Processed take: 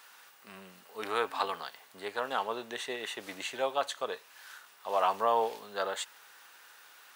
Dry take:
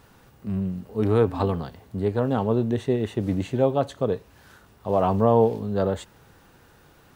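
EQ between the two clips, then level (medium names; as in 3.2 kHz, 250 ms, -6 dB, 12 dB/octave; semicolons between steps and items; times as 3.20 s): high-pass 1.3 kHz 12 dB/octave; +5.0 dB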